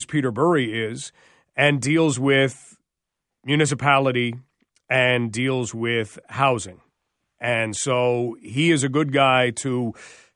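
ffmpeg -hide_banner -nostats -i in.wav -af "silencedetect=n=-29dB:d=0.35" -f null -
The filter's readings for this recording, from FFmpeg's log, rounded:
silence_start: 1.07
silence_end: 1.58 | silence_duration: 0.51
silence_start: 2.52
silence_end: 3.48 | silence_duration: 0.96
silence_start: 4.35
silence_end: 4.90 | silence_duration: 0.55
silence_start: 6.69
silence_end: 7.42 | silence_duration: 0.73
silence_start: 9.90
silence_end: 10.36 | silence_duration: 0.45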